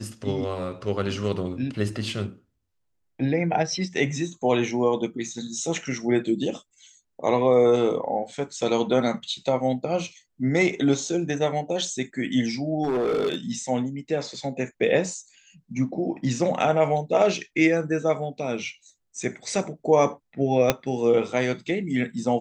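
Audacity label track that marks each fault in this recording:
12.840000	13.350000	clipped -20.5 dBFS
20.700000	20.700000	pop -3 dBFS

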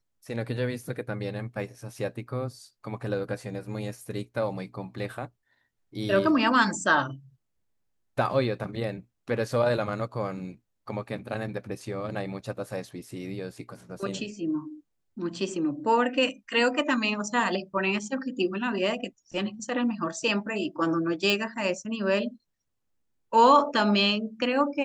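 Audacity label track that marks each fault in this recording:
21.300000	21.300000	pop -11 dBFS

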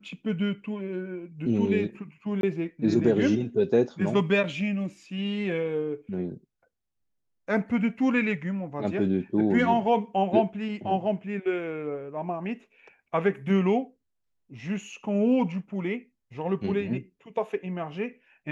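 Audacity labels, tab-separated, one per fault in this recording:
2.410000	2.430000	dropout 22 ms

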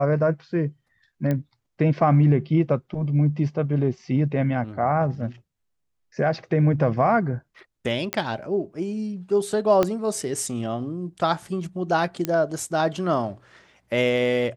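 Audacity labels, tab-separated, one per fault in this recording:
1.310000	1.310000	pop -14 dBFS
8.130000	8.130000	pop -7 dBFS
9.830000	9.830000	pop -8 dBFS
12.250000	12.250000	pop -10 dBFS

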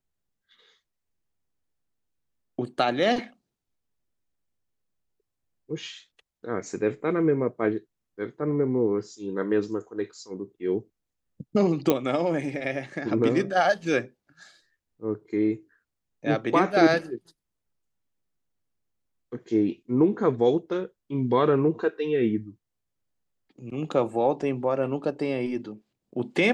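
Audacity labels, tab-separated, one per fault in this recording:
11.900000	11.900000	pop -8 dBFS

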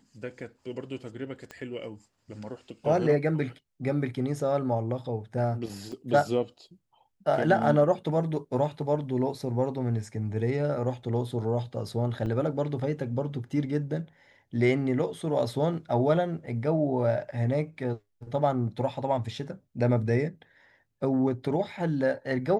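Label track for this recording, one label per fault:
1.510000	1.510000	pop -26 dBFS
5.920000	5.930000	dropout 5.3 ms
12.260000	12.270000	dropout 5.6 ms

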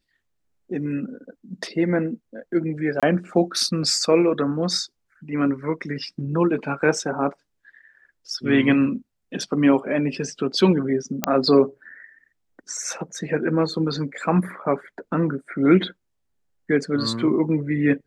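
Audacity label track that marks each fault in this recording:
3.000000	3.030000	dropout 26 ms
11.240000	11.240000	pop -3 dBFS

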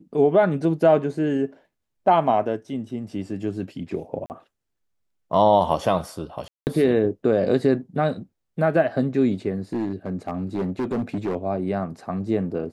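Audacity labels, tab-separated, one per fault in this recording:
4.260000	4.300000	dropout 39 ms
6.480000	6.670000	dropout 189 ms
9.730000	11.360000	clipped -21 dBFS

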